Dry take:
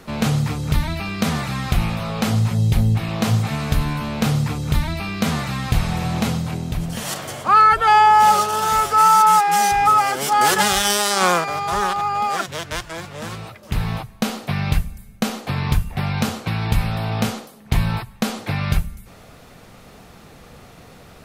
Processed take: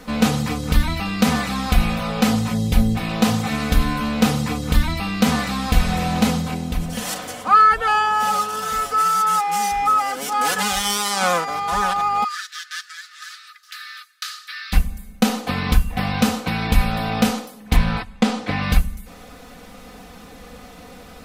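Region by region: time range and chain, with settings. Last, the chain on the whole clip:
0:12.24–0:14.73: floating-point word with a short mantissa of 6 bits + Chebyshev high-pass with heavy ripple 1,200 Hz, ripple 9 dB
0:17.76–0:18.62: high-frequency loss of the air 57 metres + highs frequency-modulated by the lows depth 0.32 ms
whole clip: comb filter 4 ms, depth 82%; speech leveller within 4 dB 2 s; level −3 dB

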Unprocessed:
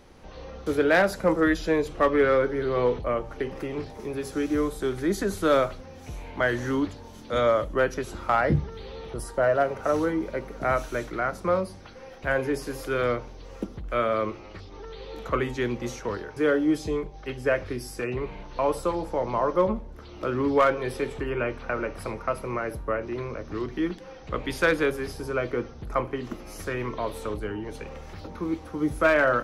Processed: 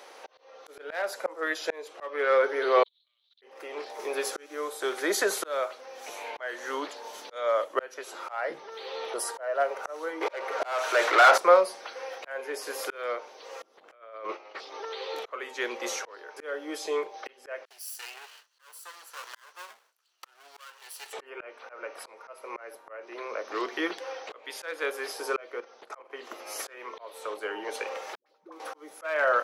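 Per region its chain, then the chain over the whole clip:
0:02.83–0:03.42: output level in coarse steps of 20 dB + transient designer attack −6 dB, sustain −11 dB + flat-topped band-pass 3,800 Hz, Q 5.6
0:10.21–0:11.38: low-shelf EQ 170 Hz −11.5 dB + mid-hump overdrive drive 27 dB, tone 2,000 Hz, clips at −13.5 dBFS
0:13.80–0:14.60: downward expander −36 dBFS + low-pass filter 3,700 Hz 6 dB per octave + compressor whose output falls as the input rises −32 dBFS, ratio −0.5
0:17.65–0:21.13: lower of the sound and its delayed copy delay 0.68 ms + noise gate with hold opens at −30 dBFS, closes at −37 dBFS + first difference
0:25.60–0:26.10: low-pass filter 9,600 Hz + low-shelf EQ 88 Hz −10 dB + output level in coarse steps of 10 dB
0:28.15–0:28.60: noise gate −33 dBFS, range −31 dB + downward compressor 12 to 1, threshold −42 dBFS + all-pass dispersion highs, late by 109 ms, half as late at 400 Hz
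whole clip: high-pass filter 490 Hz 24 dB per octave; volume swells 745 ms; level +8 dB

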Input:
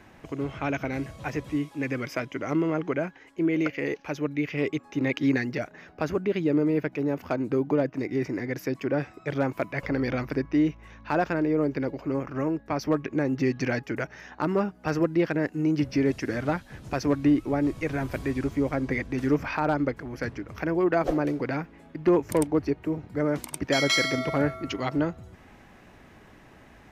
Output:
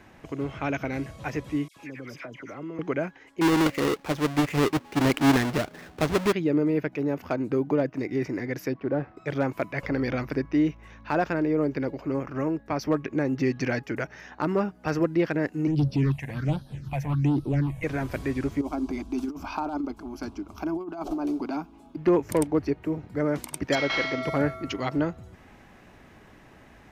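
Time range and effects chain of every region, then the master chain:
0:01.68–0:02.79: all-pass dispersion lows, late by 86 ms, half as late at 1,800 Hz + downward compressor 2 to 1, threshold −43 dBFS
0:03.41–0:06.33: each half-wave held at its own peak + high-shelf EQ 5,600 Hz −8.5 dB
0:08.73–0:09.17: variable-slope delta modulation 32 kbit/s + low-pass filter 1,300 Hz
0:15.67–0:17.84: hard clipping −22.5 dBFS + parametric band 140 Hz +14 dB 0.21 octaves + all-pass phaser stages 6, 1.3 Hz, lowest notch 330–2,200 Hz
0:18.61–0:21.97: compressor whose output falls as the input rises −26 dBFS, ratio −0.5 + phaser with its sweep stopped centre 500 Hz, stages 6
0:23.75–0:24.23: variable-slope delta modulation 32 kbit/s + bass and treble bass −6 dB, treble −11 dB
whole clip: no processing

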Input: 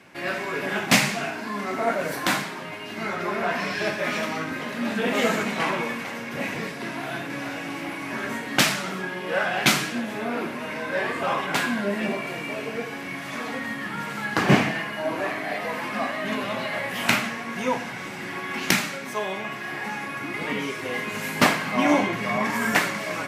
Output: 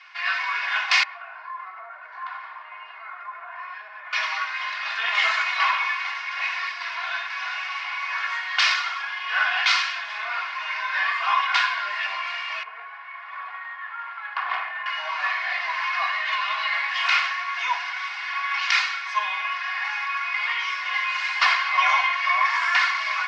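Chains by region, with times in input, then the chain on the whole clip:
0:01.03–0:04.13: low-pass filter 1,200 Hz + mains-hum notches 50/100/150/200/250/300/350 Hz + downward compressor, threshold −34 dBFS
0:12.63–0:14.86: low-pass filter 1,400 Hz + tube saturation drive 16 dB, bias 0.65 + highs frequency-modulated by the lows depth 0.2 ms
whole clip: elliptic band-pass filter 990–5,100 Hz, stop band 50 dB; comb filter 2.8 ms, depth 69%; boost into a limiter +12 dB; level −7.5 dB

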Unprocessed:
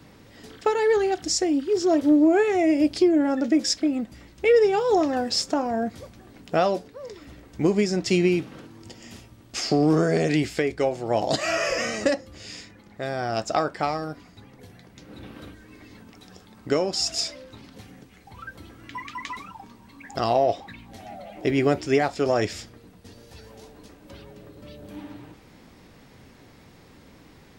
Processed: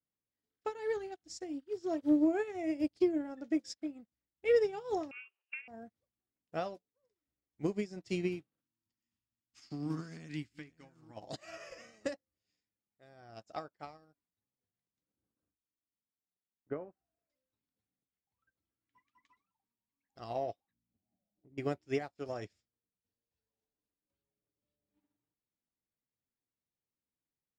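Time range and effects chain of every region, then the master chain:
0:05.11–0:05.68: voice inversion scrambler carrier 3,000 Hz + linear-phase brick-wall high-pass 330 Hz
0:08.60–0:11.17: delay that plays each chunk backwards 629 ms, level −10.5 dB + flat-topped bell 530 Hz −12.5 dB 1.2 octaves
0:15.12–0:17.30: low-pass filter 1,800 Hz 24 dB per octave + noise gate −45 dBFS, range −9 dB + one half of a high-frequency compander decoder only
0:20.73–0:21.58: resonant band-pass 200 Hz, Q 0.88 + spectral tilt −3 dB per octave + downward compressor 12 to 1, threshold −27 dBFS
whole clip: dynamic equaliser 110 Hz, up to +4 dB, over −38 dBFS, Q 1.3; expander for the loud parts 2.5 to 1, over −41 dBFS; level −8.5 dB

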